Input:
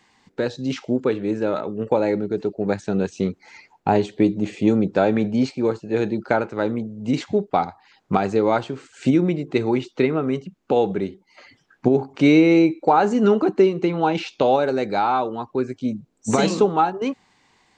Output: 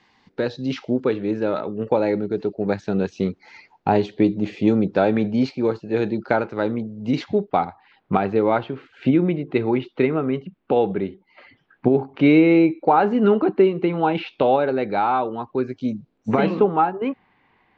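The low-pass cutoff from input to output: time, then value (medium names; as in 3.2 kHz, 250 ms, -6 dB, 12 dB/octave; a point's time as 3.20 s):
low-pass 24 dB/octave
7.20 s 5.2 kHz
7.67 s 3.4 kHz
15.40 s 3.4 kHz
15.94 s 6.1 kHz
16.33 s 2.7 kHz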